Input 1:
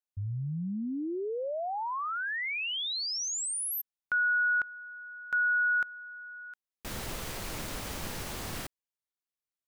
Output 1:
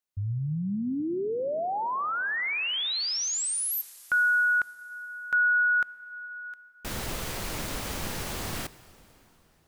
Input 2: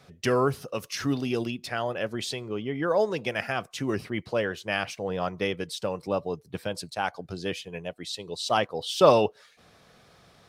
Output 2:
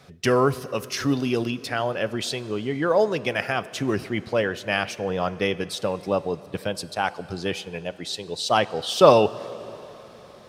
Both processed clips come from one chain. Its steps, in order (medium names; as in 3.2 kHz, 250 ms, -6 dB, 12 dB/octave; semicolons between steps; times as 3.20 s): plate-style reverb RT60 4 s, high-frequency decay 0.85×, DRR 16.5 dB; trim +4 dB